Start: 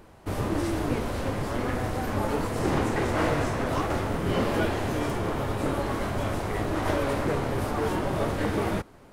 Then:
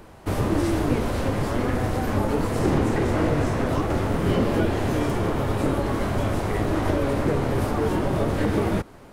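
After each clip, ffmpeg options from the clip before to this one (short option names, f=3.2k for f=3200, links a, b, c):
-filter_complex "[0:a]acrossover=split=490[a][b];[b]acompressor=threshold=-34dB:ratio=6[c];[a][c]amix=inputs=2:normalize=0,volume=5.5dB"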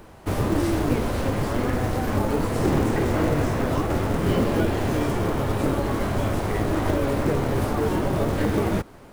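-af "acrusher=bits=6:mode=log:mix=0:aa=0.000001"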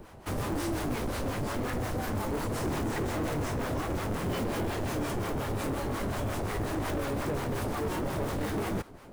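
-filter_complex "[0:a]acrossover=split=720[a][b];[a]aeval=exprs='val(0)*(1-0.7/2+0.7/2*cos(2*PI*5.6*n/s))':c=same[c];[b]aeval=exprs='val(0)*(1-0.7/2-0.7/2*cos(2*PI*5.6*n/s))':c=same[d];[c][d]amix=inputs=2:normalize=0,acrossover=split=4200[e][f];[e]asoftclip=type=tanh:threshold=-28dB[g];[g][f]amix=inputs=2:normalize=0"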